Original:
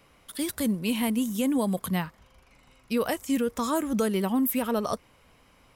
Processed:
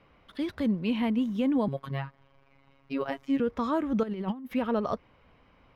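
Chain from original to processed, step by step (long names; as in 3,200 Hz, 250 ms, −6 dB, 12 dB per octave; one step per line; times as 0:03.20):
0:01.68–0:03.40: phases set to zero 137 Hz
0:04.03–0:04.54: compressor whose output falls as the input rises −31 dBFS, ratio −0.5
high-frequency loss of the air 290 metres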